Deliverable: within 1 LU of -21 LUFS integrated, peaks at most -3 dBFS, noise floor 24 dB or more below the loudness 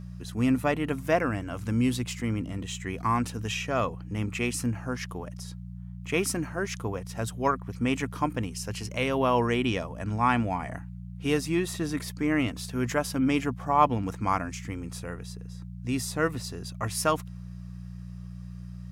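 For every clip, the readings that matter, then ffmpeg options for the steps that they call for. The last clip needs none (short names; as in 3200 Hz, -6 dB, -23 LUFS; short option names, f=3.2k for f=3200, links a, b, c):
hum 60 Hz; harmonics up to 180 Hz; hum level -38 dBFS; loudness -29.0 LUFS; peak -8.0 dBFS; loudness target -21.0 LUFS
-> -af "bandreject=f=60:t=h:w=4,bandreject=f=120:t=h:w=4,bandreject=f=180:t=h:w=4"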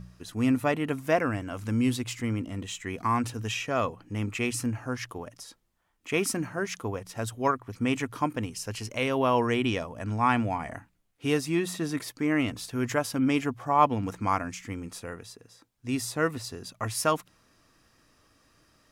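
hum none; loudness -29.0 LUFS; peak -8.0 dBFS; loudness target -21.0 LUFS
-> -af "volume=8dB,alimiter=limit=-3dB:level=0:latency=1"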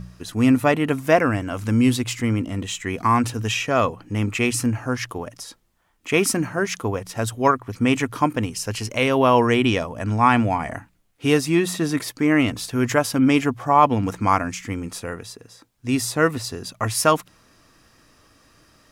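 loudness -21.0 LUFS; peak -3.0 dBFS; noise floor -61 dBFS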